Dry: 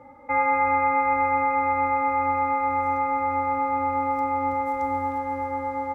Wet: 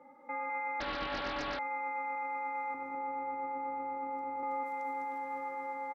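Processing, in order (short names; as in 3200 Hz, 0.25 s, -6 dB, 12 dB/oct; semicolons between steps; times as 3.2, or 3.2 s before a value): 2.74–4.43 tilt shelf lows +7.5 dB, about 930 Hz; limiter -21 dBFS, peak gain reduction 9 dB; HPF 190 Hz 24 dB/oct; echo 0.205 s -4.5 dB; 0.8–1.59 Doppler distortion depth 0.89 ms; gain -9 dB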